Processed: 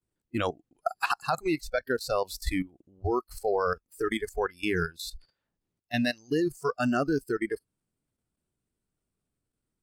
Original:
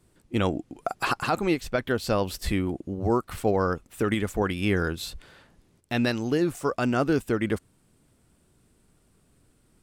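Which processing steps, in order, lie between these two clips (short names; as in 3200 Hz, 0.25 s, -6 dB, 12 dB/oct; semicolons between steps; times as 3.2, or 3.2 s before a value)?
short-mantissa float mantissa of 8-bit; level quantiser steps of 13 dB; spectral noise reduction 21 dB; gain +2 dB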